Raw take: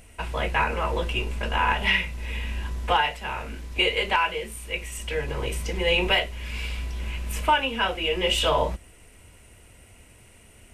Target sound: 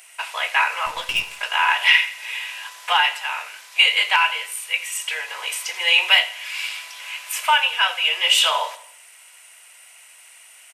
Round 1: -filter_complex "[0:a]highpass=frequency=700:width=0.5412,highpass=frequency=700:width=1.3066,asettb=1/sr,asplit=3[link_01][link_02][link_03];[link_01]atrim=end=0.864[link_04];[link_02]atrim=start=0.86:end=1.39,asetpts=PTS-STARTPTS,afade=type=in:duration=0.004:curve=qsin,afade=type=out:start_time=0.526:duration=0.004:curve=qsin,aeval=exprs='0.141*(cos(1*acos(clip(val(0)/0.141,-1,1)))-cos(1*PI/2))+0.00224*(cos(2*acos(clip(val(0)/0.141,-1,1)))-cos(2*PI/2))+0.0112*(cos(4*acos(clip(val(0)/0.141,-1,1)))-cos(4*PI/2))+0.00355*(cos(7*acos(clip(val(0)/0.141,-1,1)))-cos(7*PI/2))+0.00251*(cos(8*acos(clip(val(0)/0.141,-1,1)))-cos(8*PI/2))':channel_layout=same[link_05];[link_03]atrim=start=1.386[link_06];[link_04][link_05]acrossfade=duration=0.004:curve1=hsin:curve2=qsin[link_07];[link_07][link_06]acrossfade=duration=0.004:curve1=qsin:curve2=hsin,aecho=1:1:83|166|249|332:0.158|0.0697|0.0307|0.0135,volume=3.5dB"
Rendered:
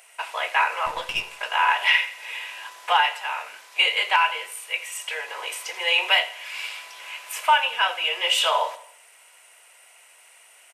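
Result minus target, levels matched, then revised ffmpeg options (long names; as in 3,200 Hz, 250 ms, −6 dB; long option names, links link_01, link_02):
1,000 Hz band +4.0 dB
-filter_complex "[0:a]highpass=frequency=700:width=0.5412,highpass=frequency=700:width=1.3066,tiltshelf=frequency=970:gain=-6.5,asettb=1/sr,asplit=3[link_01][link_02][link_03];[link_01]atrim=end=0.864[link_04];[link_02]atrim=start=0.86:end=1.39,asetpts=PTS-STARTPTS,afade=type=in:duration=0.004:curve=qsin,afade=type=out:start_time=0.526:duration=0.004:curve=qsin,aeval=exprs='0.141*(cos(1*acos(clip(val(0)/0.141,-1,1)))-cos(1*PI/2))+0.00224*(cos(2*acos(clip(val(0)/0.141,-1,1)))-cos(2*PI/2))+0.0112*(cos(4*acos(clip(val(0)/0.141,-1,1)))-cos(4*PI/2))+0.00355*(cos(7*acos(clip(val(0)/0.141,-1,1)))-cos(7*PI/2))+0.00251*(cos(8*acos(clip(val(0)/0.141,-1,1)))-cos(8*PI/2))':channel_layout=same[link_05];[link_03]atrim=start=1.386[link_06];[link_04][link_05]acrossfade=duration=0.004:curve1=hsin:curve2=qsin[link_07];[link_07][link_06]acrossfade=duration=0.004:curve1=qsin:curve2=hsin,aecho=1:1:83|166|249|332:0.158|0.0697|0.0307|0.0135,volume=3.5dB"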